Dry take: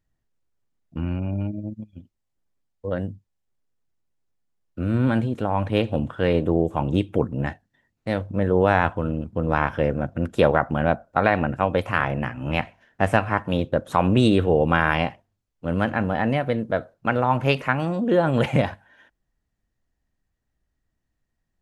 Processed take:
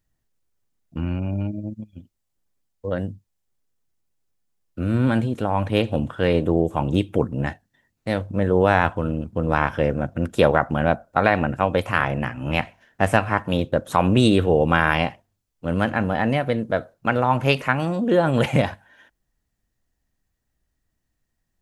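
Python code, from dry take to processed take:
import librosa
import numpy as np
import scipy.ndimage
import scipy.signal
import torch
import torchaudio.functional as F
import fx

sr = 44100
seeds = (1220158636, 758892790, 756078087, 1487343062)

y = fx.high_shelf(x, sr, hz=5000.0, db=7.5)
y = y * 10.0 ** (1.0 / 20.0)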